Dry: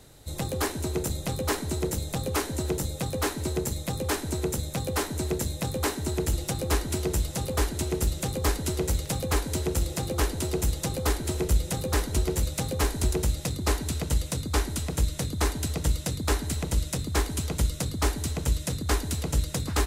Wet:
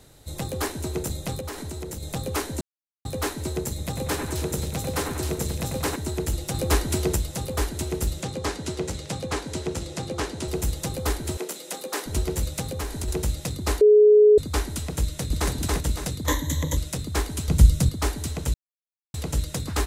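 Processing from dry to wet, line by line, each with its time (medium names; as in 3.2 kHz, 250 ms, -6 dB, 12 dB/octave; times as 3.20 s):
1.40–2.03 s: compression, threshold -30 dBFS
2.61–3.05 s: mute
3.69–5.96 s: two-band feedback delay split 2.7 kHz, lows 94 ms, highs 263 ms, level -5 dB
6.54–7.16 s: gain +4 dB
8.21–10.48 s: band-pass 100–7500 Hz
11.37–12.06 s: Bessel high-pass 380 Hz, order 8
12.61–13.08 s: compression 3:1, threshold -27 dBFS
13.81–14.38 s: bleep 421 Hz -10.5 dBFS
15.02–15.52 s: echo throw 280 ms, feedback 40%, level -1 dB
16.26–16.77 s: rippled EQ curve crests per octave 1.1, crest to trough 16 dB
17.48–17.89 s: tone controls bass +12 dB, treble +3 dB
18.54–19.14 s: mute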